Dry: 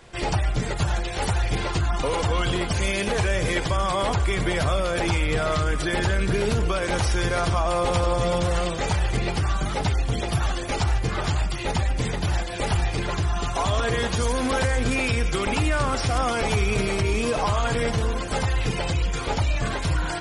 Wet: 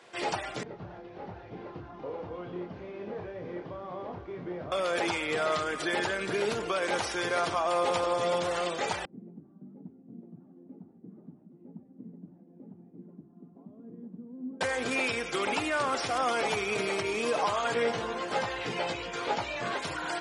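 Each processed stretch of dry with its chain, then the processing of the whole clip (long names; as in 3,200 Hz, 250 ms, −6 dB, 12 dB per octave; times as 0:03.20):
0:00.63–0:04.72: linear delta modulator 32 kbit/s, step −33.5 dBFS + resonant band-pass 100 Hz, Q 0.54 + double-tracking delay 28 ms −5.5 dB
0:09.05–0:14.61: flat-topped band-pass 210 Hz, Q 2.2 + single-tap delay 804 ms −14 dB
0:17.74–0:19.76: high-frequency loss of the air 61 metres + double-tracking delay 17 ms −6 dB
whole clip: high-pass filter 320 Hz 12 dB per octave; high-shelf EQ 7,800 Hz −8 dB; level −3 dB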